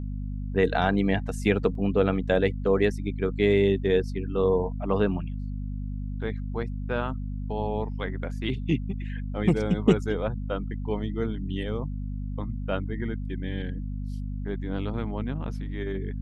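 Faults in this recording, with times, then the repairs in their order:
mains hum 50 Hz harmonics 5 −32 dBFS
0:01.75: drop-out 2.6 ms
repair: hum removal 50 Hz, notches 5
repair the gap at 0:01.75, 2.6 ms

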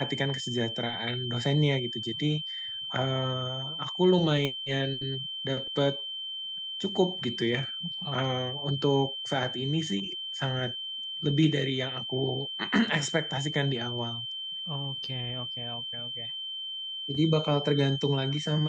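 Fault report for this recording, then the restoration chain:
whistle 3,100 Hz −34 dBFS
0:04.45: click −16 dBFS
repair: click removal
notch filter 3,100 Hz, Q 30

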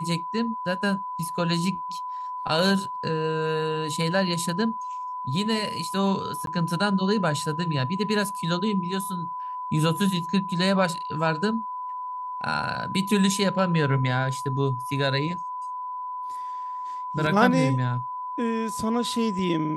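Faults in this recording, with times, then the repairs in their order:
whistle 1,000 Hz −30 dBFS
0:06.46–0:06.47: drop-out 12 ms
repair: notch filter 1,000 Hz, Q 30
repair the gap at 0:06.46, 12 ms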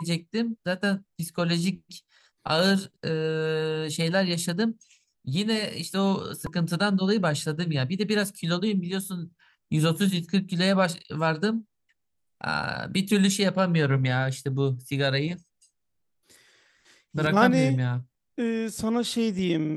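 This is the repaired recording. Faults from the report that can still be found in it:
none of them is left

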